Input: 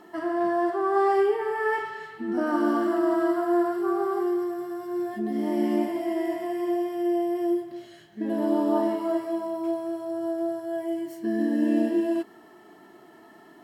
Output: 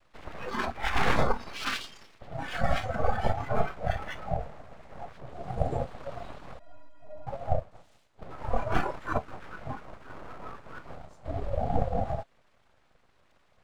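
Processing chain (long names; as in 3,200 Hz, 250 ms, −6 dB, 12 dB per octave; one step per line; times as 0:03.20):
cochlear-implant simulation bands 6
full-wave rectification
noise reduction from a noise print of the clip's start 13 dB
0:06.59–0:07.27: stiff-string resonator 290 Hz, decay 0.28 s, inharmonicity 0.03
level +1 dB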